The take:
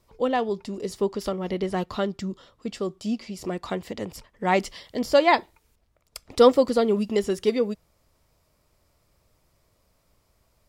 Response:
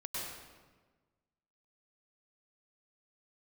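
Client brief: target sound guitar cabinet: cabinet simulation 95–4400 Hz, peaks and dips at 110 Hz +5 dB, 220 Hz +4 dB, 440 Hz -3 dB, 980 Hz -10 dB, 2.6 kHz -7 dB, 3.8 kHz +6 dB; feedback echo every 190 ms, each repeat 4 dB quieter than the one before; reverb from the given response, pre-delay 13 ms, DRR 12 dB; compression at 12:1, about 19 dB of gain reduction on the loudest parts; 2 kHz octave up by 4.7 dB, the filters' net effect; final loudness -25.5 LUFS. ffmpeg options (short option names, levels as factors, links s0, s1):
-filter_complex "[0:a]equalizer=f=2000:t=o:g=7,acompressor=threshold=0.0316:ratio=12,aecho=1:1:190|380|570|760|950|1140|1330|1520|1710:0.631|0.398|0.25|0.158|0.0994|0.0626|0.0394|0.0249|0.0157,asplit=2[s0][s1];[1:a]atrim=start_sample=2205,adelay=13[s2];[s1][s2]afir=irnorm=-1:irlink=0,volume=0.211[s3];[s0][s3]amix=inputs=2:normalize=0,highpass=95,equalizer=f=110:t=q:w=4:g=5,equalizer=f=220:t=q:w=4:g=4,equalizer=f=440:t=q:w=4:g=-3,equalizer=f=980:t=q:w=4:g=-10,equalizer=f=2600:t=q:w=4:g=-7,equalizer=f=3800:t=q:w=4:g=6,lowpass=f=4400:w=0.5412,lowpass=f=4400:w=1.3066,volume=2.66"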